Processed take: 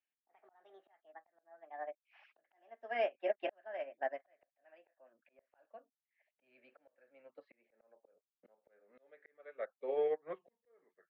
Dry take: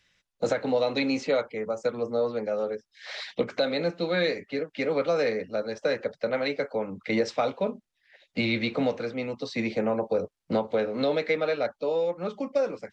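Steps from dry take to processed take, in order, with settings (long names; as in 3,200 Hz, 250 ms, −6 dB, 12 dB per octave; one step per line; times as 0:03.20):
gliding playback speed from 150% → 83%
loudspeaker in its box 450–2,400 Hz, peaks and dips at 600 Hz +5 dB, 1,000 Hz −4 dB, 1,700 Hz +9 dB
volume swells 750 ms
expander for the loud parts 2.5 to 1, over −39 dBFS
level −3 dB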